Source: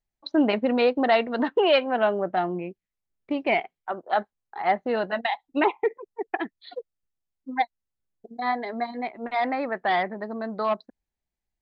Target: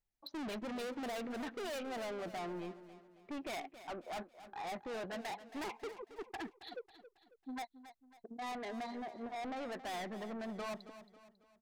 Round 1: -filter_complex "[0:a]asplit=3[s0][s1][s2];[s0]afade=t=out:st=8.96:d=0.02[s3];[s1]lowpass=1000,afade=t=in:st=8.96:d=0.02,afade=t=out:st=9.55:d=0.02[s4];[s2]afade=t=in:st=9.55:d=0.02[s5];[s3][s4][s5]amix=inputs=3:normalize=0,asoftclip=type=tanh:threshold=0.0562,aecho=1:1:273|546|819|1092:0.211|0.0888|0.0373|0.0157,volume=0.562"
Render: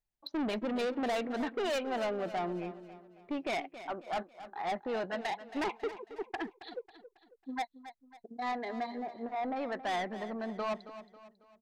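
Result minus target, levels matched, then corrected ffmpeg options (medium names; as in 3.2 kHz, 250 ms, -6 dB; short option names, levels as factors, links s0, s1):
saturation: distortion -5 dB
-filter_complex "[0:a]asplit=3[s0][s1][s2];[s0]afade=t=out:st=8.96:d=0.02[s3];[s1]lowpass=1000,afade=t=in:st=8.96:d=0.02,afade=t=out:st=9.55:d=0.02[s4];[s2]afade=t=in:st=9.55:d=0.02[s5];[s3][s4][s5]amix=inputs=3:normalize=0,asoftclip=type=tanh:threshold=0.0178,aecho=1:1:273|546|819|1092:0.211|0.0888|0.0373|0.0157,volume=0.562"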